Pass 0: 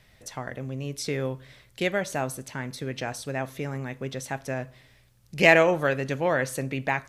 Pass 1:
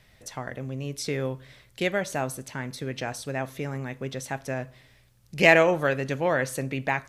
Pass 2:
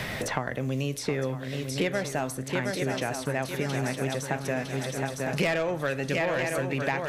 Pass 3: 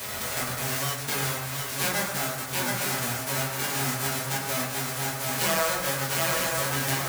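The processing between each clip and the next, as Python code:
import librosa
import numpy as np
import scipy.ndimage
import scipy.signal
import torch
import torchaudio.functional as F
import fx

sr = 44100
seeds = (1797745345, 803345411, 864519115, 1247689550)

y1 = x
y2 = fx.echo_swing(y1, sr, ms=956, ratio=3, feedback_pct=45, wet_db=-8.0)
y2 = 10.0 ** (-15.5 / 20.0) * np.tanh(y2 / 10.0 ** (-15.5 / 20.0))
y2 = fx.band_squash(y2, sr, depth_pct=100)
y2 = y2 * librosa.db_to_amplitude(-1.0)
y3 = fx.envelope_flatten(y2, sr, power=0.1)
y3 = fx.rev_fdn(y3, sr, rt60_s=1.1, lf_ratio=0.9, hf_ratio=0.4, size_ms=73.0, drr_db=-9.5)
y3 = y3 * librosa.db_to_amplitude(-6.5)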